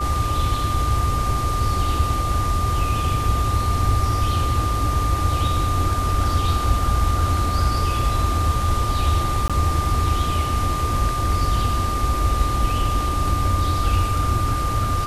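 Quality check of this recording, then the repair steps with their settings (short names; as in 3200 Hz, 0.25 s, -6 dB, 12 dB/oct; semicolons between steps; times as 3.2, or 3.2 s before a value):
tone 1200 Hz -24 dBFS
9.48–9.5 gap 16 ms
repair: notch 1200 Hz, Q 30; interpolate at 9.48, 16 ms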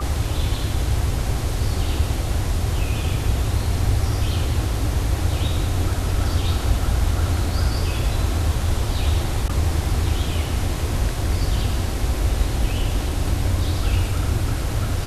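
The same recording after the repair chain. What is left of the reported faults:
none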